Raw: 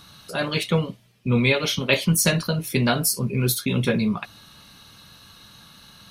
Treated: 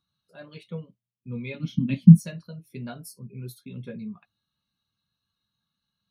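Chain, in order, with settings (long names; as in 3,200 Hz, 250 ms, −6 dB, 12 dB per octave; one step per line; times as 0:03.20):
0:01.54–0:02.20: low shelf with overshoot 330 Hz +11 dB, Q 3
every bin expanded away from the loudest bin 1.5 to 1
level −5.5 dB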